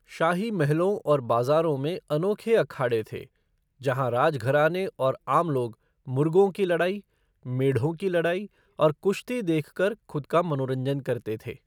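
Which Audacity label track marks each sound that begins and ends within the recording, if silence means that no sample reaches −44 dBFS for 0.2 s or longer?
3.810000	5.730000	sound
6.070000	7.000000	sound
7.450000	8.470000	sound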